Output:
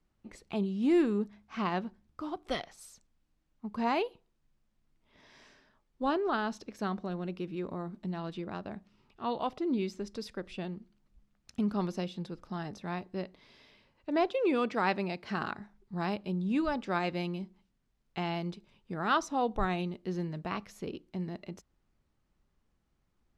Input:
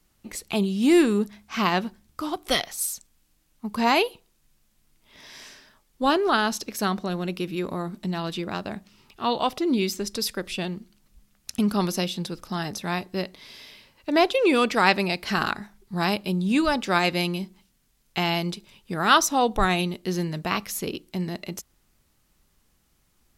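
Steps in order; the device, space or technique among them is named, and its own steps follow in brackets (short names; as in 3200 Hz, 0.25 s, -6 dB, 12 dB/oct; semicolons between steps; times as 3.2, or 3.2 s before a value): through cloth (LPF 7500 Hz 12 dB/oct; high shelf 2400 Hz -12.5 dB); 14.3–15.59 HPF 83 Hz; gain -7.5 dB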